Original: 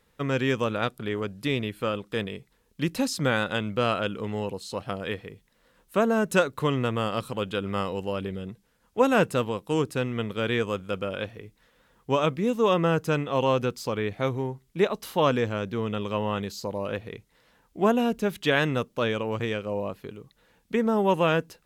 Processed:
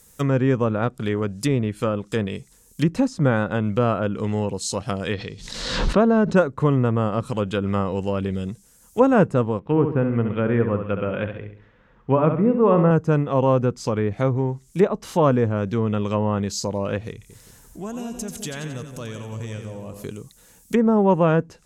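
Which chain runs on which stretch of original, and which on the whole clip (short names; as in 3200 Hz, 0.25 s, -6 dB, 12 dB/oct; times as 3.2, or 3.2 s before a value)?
5.13–6.35 synth low-pass 4200 Hz, resonance Q 3.5 + backwards sustainer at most 52 dB/s
9.59–12.91 LPF 2600 Hz 24 dB/oct + flutter echo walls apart 11.6 m, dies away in 0.52 s
17.12–20.04 low shelf 110 Hz +11 dB + compressor 2:1, threshold -49 dBFS + split-band echo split 800 Hz, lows 0.172 s, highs 89 ms, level -7 dB
whole clip: resonant high shelf 5300 Hz +8 dB, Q 1.5; treble ducked by the level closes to 1300 Hz, closed at -23.5 dBFS; tone controls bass +5 dB, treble +11 dB; gain +4.5 dB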